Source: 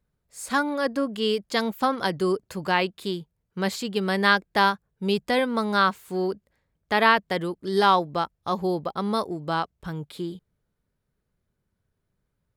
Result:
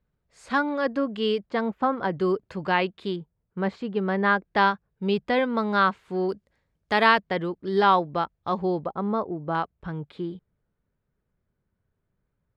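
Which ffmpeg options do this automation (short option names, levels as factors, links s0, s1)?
-af "asetnsamples=n=441:p=0,asendcmd='1.46 lowpass f 1600;2.18 lowpass f 3100;3.16 lowpass f 1600;4.45 lowpass f 3000;6.29 lowpass f 7400;7.2 lowpass f 3000;8.86 lowpass f 1300;9.55 lowpass f 2400',lowpass=3300"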